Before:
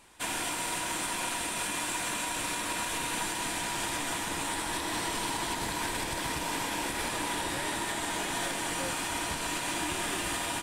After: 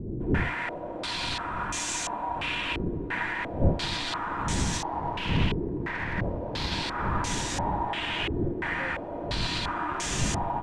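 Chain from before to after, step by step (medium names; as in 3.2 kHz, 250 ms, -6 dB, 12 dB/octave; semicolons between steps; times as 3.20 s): 4.82–6.72 s: self-modulated delay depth 0.19 ms; wind noise 160 Hz -32 dBFS; step-sequenced low-pass 2.9 Hz 380–6400 Hz; trim -1 dB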